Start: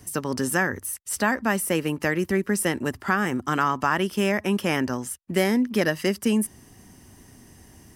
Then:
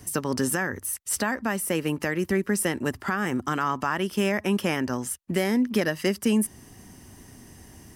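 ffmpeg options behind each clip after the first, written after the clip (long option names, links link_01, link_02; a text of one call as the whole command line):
ffmpeg -i in.wav -af "alimiter=limit=-15.5dB:level=0:latency=1:release=376,volume=2dB" out.wav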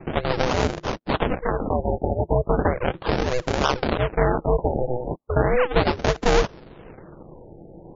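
ffmpeg -i in.wav -af "acrusher=samples=39:mix=1:aa=0.000001:lfo=1:lforange=39:lforate=3.2,aeval=exprs='val(0)*sin(2*PI*250*n/s)':channel_layout=same,afftfilt=real='re*lt(b*sr/1024,870*pow(7400/870,0.5+0.5*sin(2*PI*0.36*pts/sr)))':imag='im*lt(b*sr/1024,870*pow(7400/870,0.5+0.5*sin(2*PI*0.36*pts/sr)))':win_size=1024:overlap=0.75,volume=7.5dB" out.wav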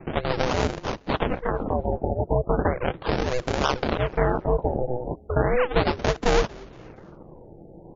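ffmpeg -i in.wav -filter_complex "[0:a]asplit=4[link_01][link_02][link_03][link_04];[link_02]adelay=234,afreqshift=-77,volume=-24dB[link_05];[link_03]adelay=468,afreqshift=-154,volume=-31.1dB[link_06];[link_04]adelay=702,afreqshift=-231,volume=-38.3dB[link_07];[link_01][link_05][link_06][link_07]amix=inputs=4:normalize=0,volume=-2dB" out.wav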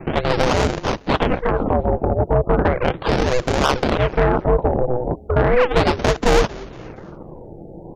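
ffmpeg -i in.wav -af "asoftclip=type=tanh:threshold=-15.5dB,volume=8.5dB" out.wav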